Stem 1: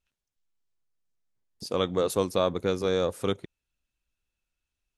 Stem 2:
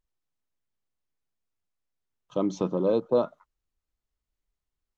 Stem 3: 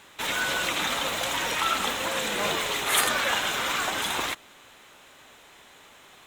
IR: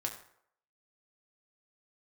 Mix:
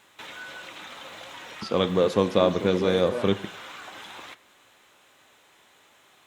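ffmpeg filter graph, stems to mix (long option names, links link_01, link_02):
-filter_complex "[0:a]equalizer=frequency=210:width_type=o:width=0.37:gain=7.5,bandreject=frequency=1300:width=12,volume=0.5dB,asplit=2[link_01][link_02];[link_02]volume=-5.5dB[link_03];[1:a]alimiter=limit=-19dB:level=0:latency=1,volume=-3.5dB[link_04];[2:a]acompressor=threshold=-32dB:ratio=6,volume=-9.5dB,asplit=2[link_05][link_06];[link_06]volume=-6.5dB[link_07];[3:a]atrim=start_sample=2205[link_08];[link_03][link_07]amix=inputs=2:normalize=0[link_09];[link_09][link_08]afir=irnorm=-1:irlink=0[link_10];[link_01][link_04][link_05][link_10]amix=inputs=4:normalize=0,highpass=frequency=99:poles=1,acrossover=split=5500[link_11][link_12];[link_12]acompressor=threshold=-58dB:ratio=4:attack=1:release=60[link_13];[link_11][link_13]amix=inputs=2:normalize=0"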